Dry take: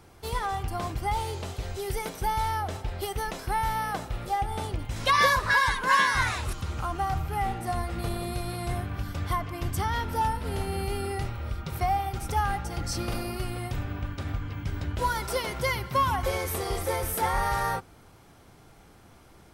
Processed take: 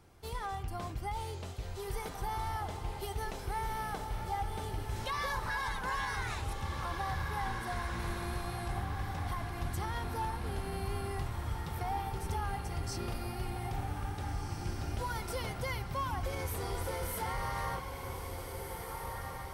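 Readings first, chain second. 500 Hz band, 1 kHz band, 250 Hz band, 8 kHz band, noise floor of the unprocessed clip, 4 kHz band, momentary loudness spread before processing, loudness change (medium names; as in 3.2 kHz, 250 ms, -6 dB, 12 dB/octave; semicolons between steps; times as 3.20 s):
-8.0 dB, -9.5 dB, -7.0 dB, -8.0 dB, -54 dBFS, -10.0 dB, 11 LU, -9.0 dB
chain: bass shelf 160 Hz +3 dB; peak limiter -20 dBFS, peak gain reduction 7.5 dB; echo that smears into a reverb 1782 ms, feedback 47%, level -4.5 dB; trim -8.5 dB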